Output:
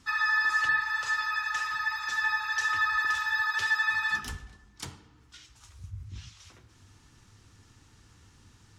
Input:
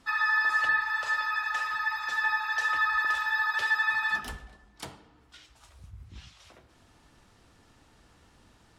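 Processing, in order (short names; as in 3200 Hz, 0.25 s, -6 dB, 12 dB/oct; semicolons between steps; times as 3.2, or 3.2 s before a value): fifteen-band EQ 100 Hz +10 dB, 630 Hz -11 dB, 6300 Hz +7 dB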